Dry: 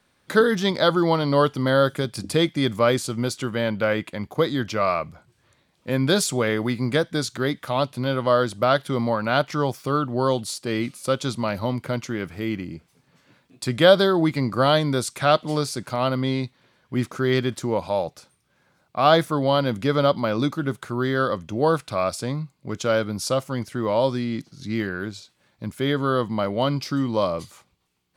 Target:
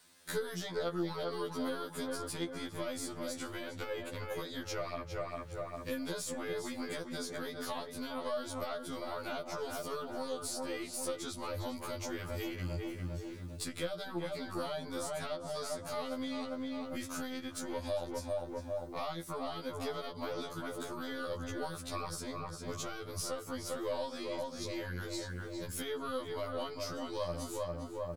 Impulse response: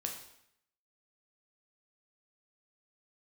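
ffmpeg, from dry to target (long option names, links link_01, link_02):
-filter_complex "[0:a]asplit=2[link_01][link_02];[link_02]adelay=401,lowpass=frequency=1300:poles=1,volume=-5.5dB,asplit=2[link_03][link_04];[link_04]adelay=401,lowpass=frequency=1300:poles=1,volume=0.5,asplit=2[link_05][link_06];[link_06]adelay=401,lowpass=frequency=1300:poles=1,volume=0.5,asplit=2[link_07][link_08];[link_08]adelay=401,lowpass=frequency=1300:poles=1,volume=0.5,asplit=2[link_09][link_10];[link_10]adelay=401,lowpass=frequency=1300:poles=1,volume=0.5,asplit=2[link_11][link_12];[link_12]adelay=401,lowpass=frequency=1300:poles=1,volume=0.5[link_13];[link_01][link_03][link_05][link_07][link_09][link_11][link_13]amix=inputs=7:normalize=0,asubboost=boost=9:cutoff=69,acrossover=split=1100|2200[link_14][link_15][link_16];[link_14]acompressor=threshold=-20dB:ratio=4[link_17];[link_15]acompressor=threshold=-37dB:ratio=4[link_18];[link_16]acompressor=threshold=-41dB:ratio=4[link_19];[link_17][link_18][link_19]amix=inputs=3:normalize=0,bass=frequency=250:gain=-5,treble=frequency=4000:gain=12,acompressor=threshold=-34dB:ratio=5,aeval=exprs='(tanh(20*val(0)+0.4)-tanh(0.4))/20':channel_layout=same,afftfilt=real='re*2*eq(mod(b,4),0)':imag='im*2*eq(mod(b,4),0)':win_size=2048:overlap=0.75,volume=2dB"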